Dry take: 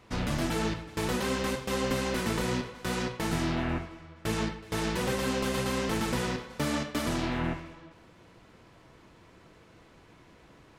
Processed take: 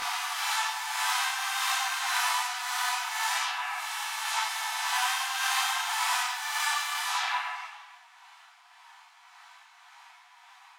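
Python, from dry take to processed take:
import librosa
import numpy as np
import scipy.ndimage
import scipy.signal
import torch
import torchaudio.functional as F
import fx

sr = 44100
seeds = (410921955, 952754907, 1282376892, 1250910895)

p1 = fx.spec_swells(x, sr, rise_s=2.59)
p2 = p1 * (1.0 - 0.46 / 2.0 + 0.46 / 2.0 * np.cos(2.0 * np.pi * 1.8 * (np.arange(len(p1)) / sr)))
p3 = fx.level_steps(p2, sr, step_db=22)
p4 = p2 + (p3 * librosa.db_to_amplitude(-1.0))
p5 = fx.brickwall_highpass(p4, sr, low_hz=690.0)
p6 = fx.rev_double_slope(p5, sr, seeds[0], early_s=0.22, late_s=1.6, knee_db=-18, drr_db=1.0)
p7 = fx.detune_double(p6, sr, cents=18)
y = p7 * librosa.db_to_amplitude(4.5)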